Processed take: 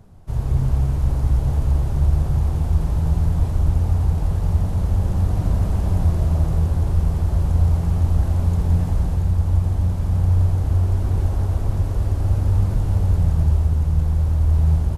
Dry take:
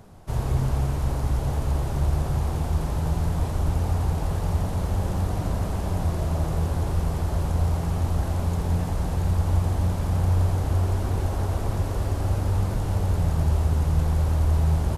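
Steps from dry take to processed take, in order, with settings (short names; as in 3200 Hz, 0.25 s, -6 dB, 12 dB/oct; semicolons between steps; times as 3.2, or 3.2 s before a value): low shelf 200 Hz +11 dB; AGC; gain -6.5 dB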